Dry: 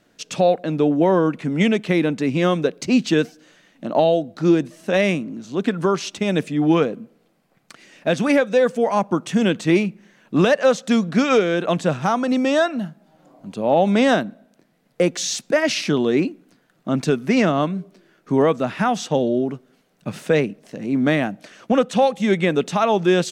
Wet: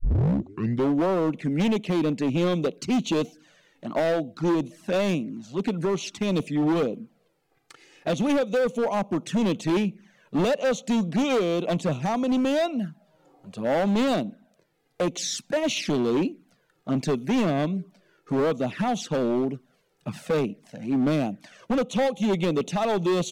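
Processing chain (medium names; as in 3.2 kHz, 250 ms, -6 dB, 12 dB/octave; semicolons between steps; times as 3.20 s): tape start-up on the opening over 0.92 s; touch-sensitive flanger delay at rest 2.6 ms, full sweep at -17.5 dBFS; hard clipper -17.5 dBFS, distortion -10 dB; trim -2 dB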